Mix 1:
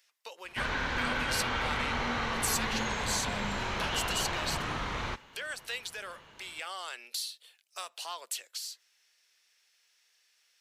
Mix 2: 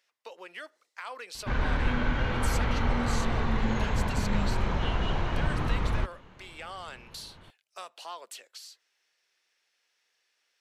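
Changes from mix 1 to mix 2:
background: entry +0.90 s; master: add tilt -3 dB/oct

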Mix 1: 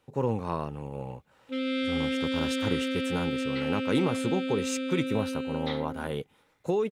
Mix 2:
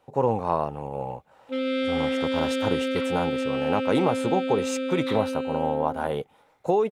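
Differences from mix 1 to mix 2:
second sound: entry -0.60 s; master: add bell 730 Hz +12 dB 1.2 oct

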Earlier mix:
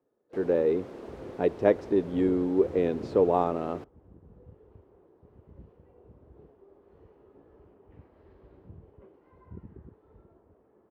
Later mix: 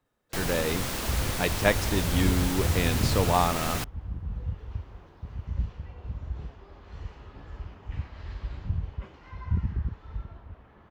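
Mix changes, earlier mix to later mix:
speech -9.0 dB; master: remove band-pass 400 Hz, Q 2.4

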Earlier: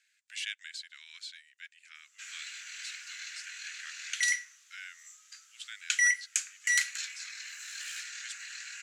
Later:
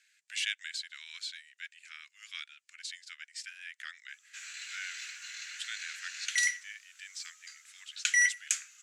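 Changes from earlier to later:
speech +4.0 dB; background: entry +2.15 s

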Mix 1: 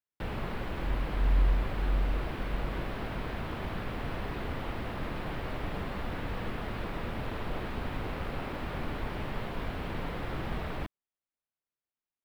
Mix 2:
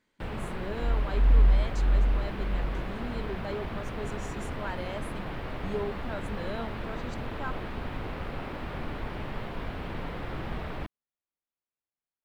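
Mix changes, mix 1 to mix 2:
speech: unmuted; second sound +5.5 dB; master: add high shelf 8000 Hz -7 dB

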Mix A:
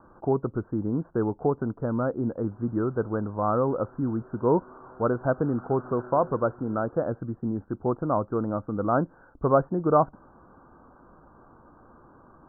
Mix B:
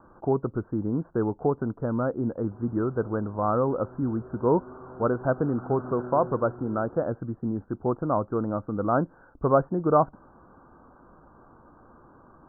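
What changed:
background: add tilt -3 dB/oct; reverb: on

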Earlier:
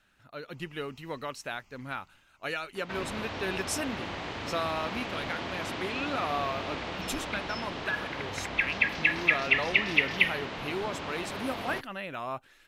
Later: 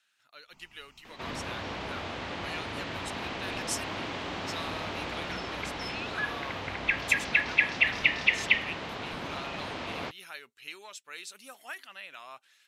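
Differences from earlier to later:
speech: add band-pass 5500 Hz, Q 0.59; second sound: entry -1.70 s; master: add high shelf 9200 Hz +3.5 dB

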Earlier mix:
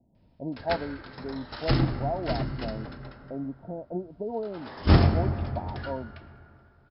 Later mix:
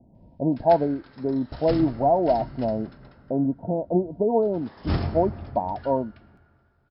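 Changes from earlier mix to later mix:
speech +11.0 dB; background -7.0 dB

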